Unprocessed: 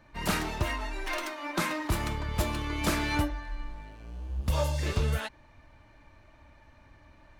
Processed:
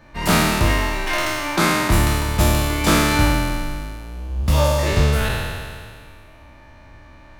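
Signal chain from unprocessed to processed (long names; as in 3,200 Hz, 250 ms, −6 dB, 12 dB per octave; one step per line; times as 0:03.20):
peak hold with a decay on every bin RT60 2.04 s
level +8 dB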